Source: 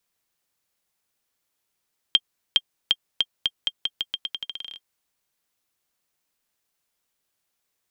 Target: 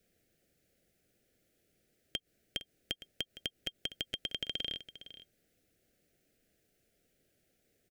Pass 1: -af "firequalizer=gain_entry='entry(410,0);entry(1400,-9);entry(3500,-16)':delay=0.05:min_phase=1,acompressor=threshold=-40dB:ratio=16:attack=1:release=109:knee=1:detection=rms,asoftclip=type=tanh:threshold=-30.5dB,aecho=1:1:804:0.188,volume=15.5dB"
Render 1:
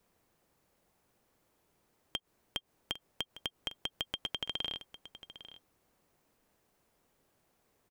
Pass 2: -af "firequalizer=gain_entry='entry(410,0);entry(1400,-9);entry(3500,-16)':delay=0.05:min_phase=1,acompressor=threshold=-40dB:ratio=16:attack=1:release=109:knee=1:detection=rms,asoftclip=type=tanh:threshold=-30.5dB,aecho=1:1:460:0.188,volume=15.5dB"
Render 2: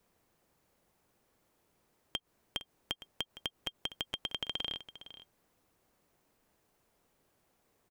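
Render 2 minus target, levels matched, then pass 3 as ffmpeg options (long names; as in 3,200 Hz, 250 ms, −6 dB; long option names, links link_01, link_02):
1,000 Hz band +10.0 dB
-af "firequalizer=gain_entry='entry(410,0);entry(1400,-9);entry(3500,-16)':delay=0.05:min_phase=1,acompressor=threshold=-40dB:ratio=16:attack=1:release=109:knee=1:detection=rms,asuperstop=centerf=1000:order=4:qfactor=1.1,asoftclip=type=tanh:threshold=-30.5dB,aecho=1:1:460:0.188,volume=15.5dB"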